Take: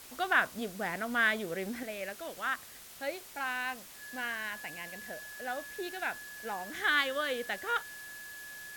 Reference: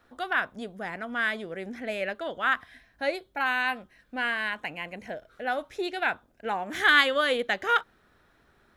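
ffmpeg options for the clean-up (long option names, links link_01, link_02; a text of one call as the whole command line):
ffmpeg -i in.wav -af "bandreject=frequency=1700:width=30,afwtdn=0.0032,asetnsamples=nb_out_samples=441:pad=0,asendcmd='1.83 volume volume 8.5dB',volume=0dB" out.wav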